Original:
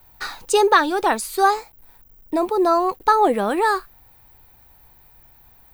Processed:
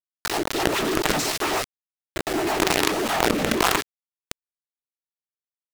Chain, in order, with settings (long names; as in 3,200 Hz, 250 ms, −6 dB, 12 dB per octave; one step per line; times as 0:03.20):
lower of the sound and its delayed copy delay 3.3 ms
low-pass that shuts in the quiet parts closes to 2,000 Hz, open at −15.5 dBFS
upward compression, threshold −32 dBFS
volume swells 226 ms
cochlear-implant simulation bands 12
echo ahead of the sound 255 ms −16.5 dB
log-companded quantiser 2 bits
rotating-speaker cabinet horn 7.5 Hz, later 0.9 Hz, at 0:02.42
envelope flattener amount 70%
level −6.5 dB